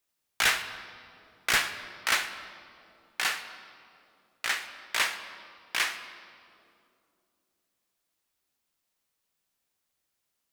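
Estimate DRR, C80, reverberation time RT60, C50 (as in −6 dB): 8.5 dB, 11.0 dB, 2.6 s, 10.5 dB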